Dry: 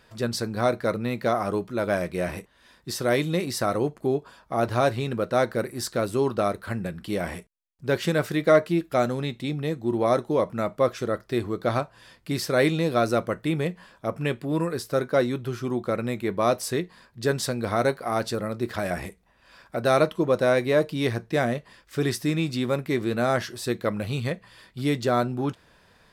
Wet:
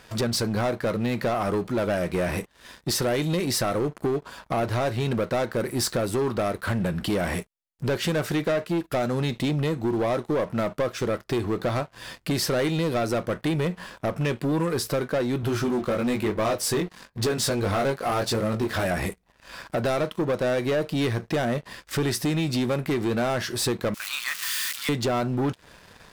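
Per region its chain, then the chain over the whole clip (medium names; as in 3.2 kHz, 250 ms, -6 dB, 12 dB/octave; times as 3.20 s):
15.41–18.86 s: chorus 1 Hz, delay 18.5 ms, depth 3.2 ms + waveshaping leveller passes 1
23.94–24.89 s: zero-crossing glitches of -23 dBFS + steep high-pass 1.1 kHz + tilt EQ -2 dB/octave
whole clip: compression 4:1, threshold -32 dBFS; waveshaping leveller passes 3; trim +1 dB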